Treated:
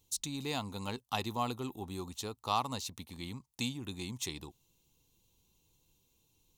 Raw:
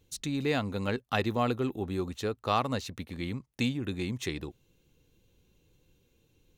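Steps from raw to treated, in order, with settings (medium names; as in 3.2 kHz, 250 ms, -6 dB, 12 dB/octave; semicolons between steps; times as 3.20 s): FFT filter 240 Hz 0 dB, 570 Hz -4 dB, 930 Hz +10 dB, 1.6 kHz -6 dB, 3.2 kHz +6 dB, 7.7 kHz +13 dB; trim -8 dB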